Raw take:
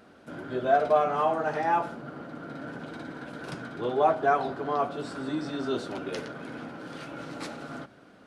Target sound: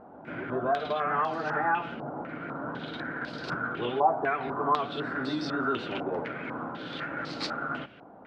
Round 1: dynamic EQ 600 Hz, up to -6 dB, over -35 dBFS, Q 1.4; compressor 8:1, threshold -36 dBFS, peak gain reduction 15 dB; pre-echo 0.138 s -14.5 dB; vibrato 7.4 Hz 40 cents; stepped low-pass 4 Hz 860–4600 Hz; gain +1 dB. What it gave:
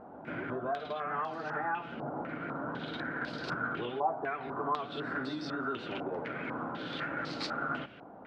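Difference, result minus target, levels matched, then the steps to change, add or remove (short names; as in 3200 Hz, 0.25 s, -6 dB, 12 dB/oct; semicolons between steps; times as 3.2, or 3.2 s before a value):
compressor: peak gain reduction +7.5 dB
change: compressor 8:1, threshold -27.5 dBFS, peak gain reduction 7.5 dB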